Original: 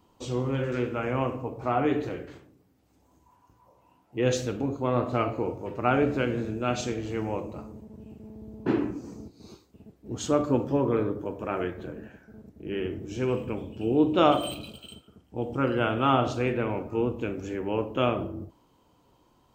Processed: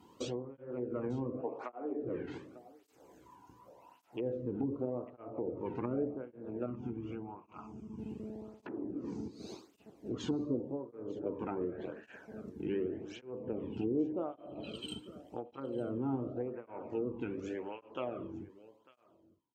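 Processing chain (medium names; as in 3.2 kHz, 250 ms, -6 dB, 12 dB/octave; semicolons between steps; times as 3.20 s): fade out at the end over 4.04 s; low-pass that closes with the level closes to 470 Hz, closed at -24.5 dBFS; 1.41–2.03 s: high-pass 240 Hz 24 dB/octave; compression 2.5:1, threshold -40 dBFS, peak gain reduction 14.5 dB; 6.66–7.99 s: static phaser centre 2.7 kHz, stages 8; delay 898 ms -20 dB; cancelling through-zero flanger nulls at 0.87 Hz, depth 1.8 ms; trim +5 dB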